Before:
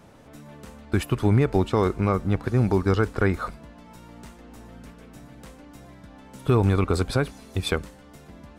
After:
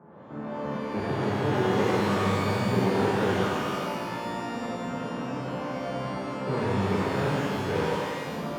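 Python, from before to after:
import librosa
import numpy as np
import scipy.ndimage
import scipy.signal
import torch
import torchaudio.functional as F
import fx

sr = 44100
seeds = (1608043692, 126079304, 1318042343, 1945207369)

y = fx.spec_steps(x, sr, hold_ms=50)
y = scipy.signal.sosfilt(scipy.signal.butter(4, 1400.0, 'lowpass', fs=sr, output='sos'), y)
y = fx.level_steps(y, sr, step_db=16)
y = 10.0 ** (-37.0 / 20.0) * np.tanh(y / 10.0 ** (-37.0 / 20.0))
y = fx.echo_thinned(y, sr, ms=94, feedback_pct=66, hz=230.0, wet_db=-3.0)
y = np.clip(y, -10.0 ** (-38.5 / 20.0), 10.0 ** (-38.5 / 20.0))
y = scipy.signal.sosfilt(scipy.signal.butter(4, 120.0, 'highpass', fs=sr, output='sos'), y)
y = fx.rev_shimmer(y, sr, seeds[0], rt60_s=1.7, semitones=12, shimmer_db=-8, drr_db=-8.0)
y = y * librosa.db_to_amplitude(9.0)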